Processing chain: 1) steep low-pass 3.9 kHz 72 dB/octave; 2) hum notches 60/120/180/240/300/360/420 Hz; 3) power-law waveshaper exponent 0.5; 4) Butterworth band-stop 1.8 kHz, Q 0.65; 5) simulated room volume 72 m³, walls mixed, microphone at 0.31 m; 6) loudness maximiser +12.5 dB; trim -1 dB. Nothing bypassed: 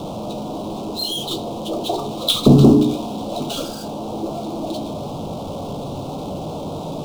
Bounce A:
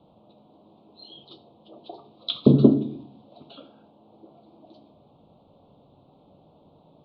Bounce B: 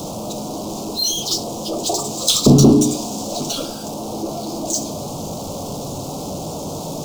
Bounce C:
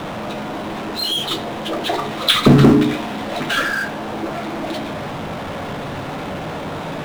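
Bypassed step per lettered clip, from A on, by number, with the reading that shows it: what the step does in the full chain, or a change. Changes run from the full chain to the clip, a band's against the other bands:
3, crest factor change +7.5 dB; 1, 8 kHz band +14.5 dB; 4, 2 kHz band +22.0 dB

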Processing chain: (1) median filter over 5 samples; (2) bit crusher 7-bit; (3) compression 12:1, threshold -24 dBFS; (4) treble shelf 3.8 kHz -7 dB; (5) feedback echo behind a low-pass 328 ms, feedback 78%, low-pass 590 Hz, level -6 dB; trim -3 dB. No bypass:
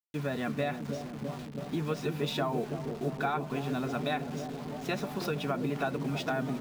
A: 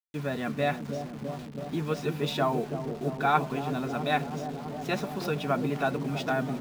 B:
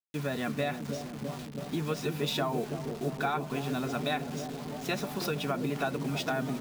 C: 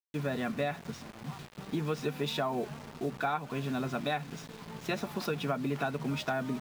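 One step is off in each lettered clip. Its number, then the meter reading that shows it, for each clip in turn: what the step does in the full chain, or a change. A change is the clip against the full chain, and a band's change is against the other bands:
3, mean gain reduction 1.5 dB; 4, 8 kHz band +5.5 dB; 5, echo-to-direct -11.0 dB to none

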